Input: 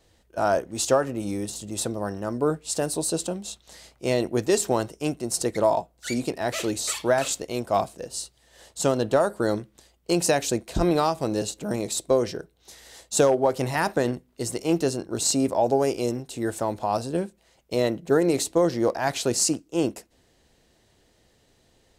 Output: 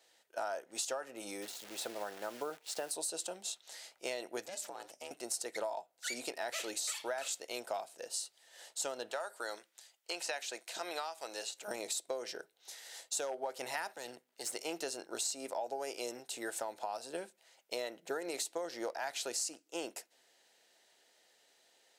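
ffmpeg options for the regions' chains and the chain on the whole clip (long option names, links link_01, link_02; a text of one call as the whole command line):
ffmpeg -i in.wav -filter_complex "[0:a]asettb=1/sr,asplit=3[link_01][link_02][link_03];[link_01]atrim=end=1.424[link_04];[link_02]atrim=start=1.42:end=2.91,asetpts=PTS-STARTPTS,afade=type=in:duration=0.004:curve=qsin,afade=type=out:start_time=1.486:duration=0.004:curve=qsin,equalizer=frequency=8500:width=0.73:gain=-13,acrusher=bits=8:dc=4:mix=0:aa=0.000001[link_05];[link_03]atrim=start=2.906[link_06];[link_04][link_05]acrossfade=duration=0.004:curve1=hsin:curve2=qsin[link_07];[link_07][link_06]acrossfade=duration=0.004:curve1=qsin:curve2=hsin,asettb=1/sr,asplit=3[link_08][link_09][link_10];[link_08]atrim=end=4.464[link_11];[link_09]atrim=start=4.46:end=5.11,asetpts=PTS-STARTPTS,afade=type=in:duration=0.004:curve=qsin,afade=type=out:start_time=0.646:duration=0.004:curve=qsin,acompressor=threshold=-29dB:ratio=12:attack=3.2:release=140:knee=1:detection=peak,aeval=exprs='val(0)*sin(2*PI*190*n/s)':channel_layout=same[link_12];[link_10]atrim=start=5.106[link_13];[link_11][link_12]acrossfade=duration=0.004:curve1=hsin:curve2=qsin[link_14];[link_14][link_13]acrossfade=duration=0.004:curve1=qsin:curve2=hsin,asettb=1/sr,asplit=3[link_15][link_16][link_17];[link_15]atrim=end=9.114[link_18];[link_16]atrim=start=9.11:end=11.68,asetpts=PTS-STARTPTS,afade=type=in:duration=0.004:curve=qsin,afade=type=out:start_time=2.566:duration=0.004:curve=qsin,highpass=frequency=1000:poles=1,acrossover=split=4000[link_19][link_20];[link_20]acompressor=threshold=-42dB:ratio=4:attack=1:release=60[link_21];[link_19][link_21]amix=inputs=2:normalize=0,equalizer=frequency=7000:width=1.5:gain=2[link_22];[link_17]atrim=start=11.676[link_23];[link_18][link_22]acrossfade=duration=0.004:curve1=hsin:curve2=qsin[link_24];[link_24][link_23]acrossfade=duration=0.004:curve1=qsin:curve2=hsin,asettb=1/sr,asplit=3[link_25][link_26][link_27];[link_25]atrim=end=13.934[link_28];[link_26]atrim=start=13.93:end=14.51,asetpts=PTS-STARTPTS,afade=type=in:duration=0.004:curve=qsin,afade=type=out:start_time=0.576:duration=0.004:curve=qsin,aeval=exprs='if(lt(val(0),0),0.447*val(0),val(0))':channel_layout=same,acrossover=split=140|3000[link_29][link_30][link_31];[link_30]acompressor=threshold=-32dB:ratio=3:attack=3.2:release=140:knee=2.83:detection=peak[link_32];[link_29][link_32][link_31]amix=inputs=3:normalize=0[link_33];[link_27]atrim=start=14.506[link_34];[link_28][link_33]acrossfade=duration=0.004:curve1=hsin:curve2=qsin[link_35];[link_35][link_34]acrossfade=duration=0.004:curve1=qsin:curve2=hsin,highpass=710,acompressor=threshold=-33dB:ratio=6,equalizer=frequency=1100:width=7.9:gain=-9.5,volume=-2dB" out.wav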